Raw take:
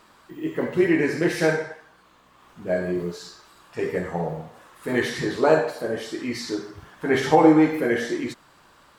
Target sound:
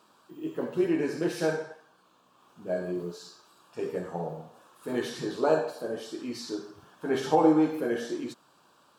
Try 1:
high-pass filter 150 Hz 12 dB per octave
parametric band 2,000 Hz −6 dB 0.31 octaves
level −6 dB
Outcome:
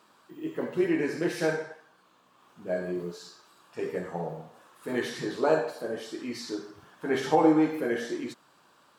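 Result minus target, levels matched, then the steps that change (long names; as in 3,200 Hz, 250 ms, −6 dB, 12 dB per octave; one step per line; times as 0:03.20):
2,000 Hz band +3.5 dB
change: parametric band 2,000 Hz −17 dB 0.31 octaves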